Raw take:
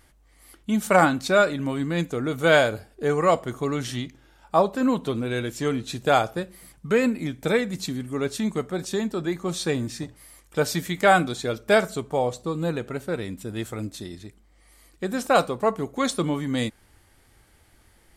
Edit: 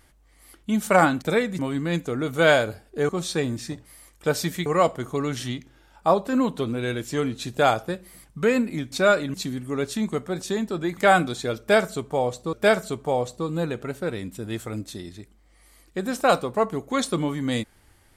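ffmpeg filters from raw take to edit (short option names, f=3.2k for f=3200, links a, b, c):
-filter_complex "[0:a]asplit=9[a][b][c][d][e][f][g][h][i];[a]atrim=end=1.222[j];[b]atrim=start=7.398:end=7.772[k];[c]atrim=start=1.638:end=3.142[l];[d]atrim=start=9.398:end=10.972[m];[e]atrim=start=3.138:end=7.402[n];[f]atrim=start=1.218:end=1.642[o];[g]atrim=start=7.768:end=9.402[p];[h]atrim=start=10.968:end=12.532[q];[i]atrim=start=11.588[r];[j][k]acrossfade=d=0.004:c1=hsin:c2=hsin[s];[s][l]acrossfade=d=0.004:c1=hsin:c2=hsin[t];[t][m]acrossfade=d=0.004:c1=hsin:c2=hsin[u];[u][n]acrossfade=d=0.004:c1=hsin:c2=hsin[v];[v][o]acrossfade=d=0.004:c1=hsin:c2=hsin[w];[w][p]acrossfade=d=0.004:c1=hsin:c2=hsin[x];[x][q]acrossfade=d=0.004:c1=hsin:c2=hsin[y];[y][r]acrossfade=d=0.004:c1=hsin:c2=hsin"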